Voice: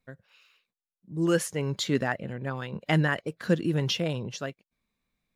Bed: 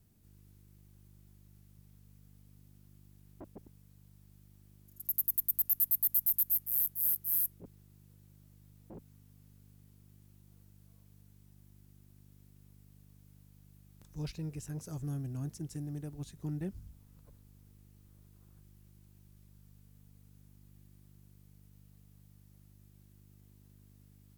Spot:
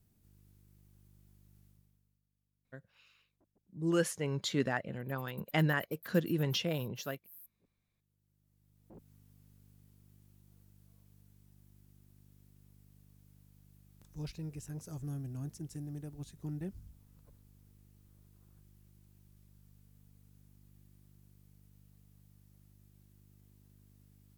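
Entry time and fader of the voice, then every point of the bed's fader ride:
2.65 s, -5.5 dB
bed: 1.67 s -3.5 dB
2.28 s -24.5 dB
7.94 s -24.5 dB
9.12 s -2.5 dB

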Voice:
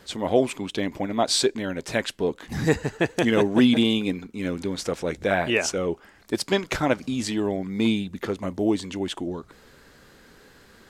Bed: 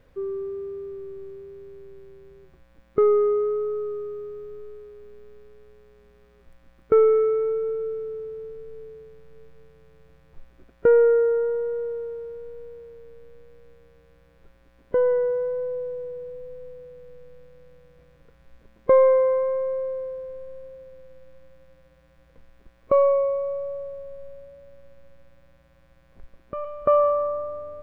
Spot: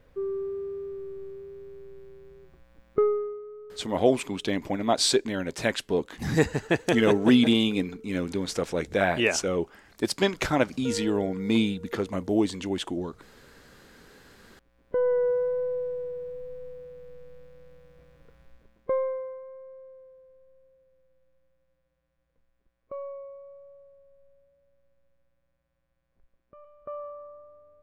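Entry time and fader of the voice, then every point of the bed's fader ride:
3.70 s, -1.0 dB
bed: 2.94 s -1 dB
3.42 s -18 dB
13.99 s -18 dB
15.30 s -0.5 dB
18.40 s -0.5 dB
19.41 s -19.5 dB

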